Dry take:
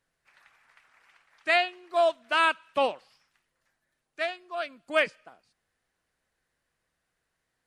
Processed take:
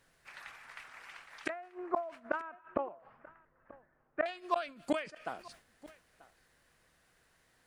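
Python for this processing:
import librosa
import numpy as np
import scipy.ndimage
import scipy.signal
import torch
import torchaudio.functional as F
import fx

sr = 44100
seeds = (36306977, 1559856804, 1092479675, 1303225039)

y = fx.lowpass(x, sr, hz=1500.0, slope=24, at=(1.49, 4.26))
y = fx.gate_flip(y, sr, shuts_db=-28.0, range_db=-31)
y = y + 10.0 ** (-21.0 / 20.0) * np.pad(y, (int(936 * sr / 1000.0), 0))[:len(y)]
y = fx.sustainer(y, sr, db_per_s=140.0)
y = F.gain(torch.from_numpy(y), 10.0).numpy()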